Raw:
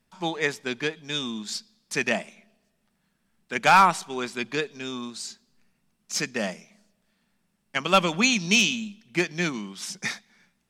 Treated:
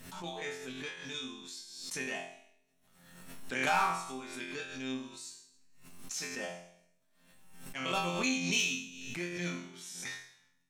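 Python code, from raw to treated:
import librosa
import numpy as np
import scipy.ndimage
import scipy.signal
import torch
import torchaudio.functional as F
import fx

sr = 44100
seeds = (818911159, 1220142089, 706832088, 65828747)

y = fx.high_shelf(x, sr, hz=6300.0, db=6.5)
y = fx.notch(y, sr, hz=4800.0, q=9.8)
y = fx.level_steps(y, sr, step_db=9)
y = fx.resonator_bank(y, sr, root=41, chord='fifth', decay_s=0.67)
y = fx.pre_swell(y, sr, db_per_s=48.0)
y = y * librosa.db_to_amplitude(6.0)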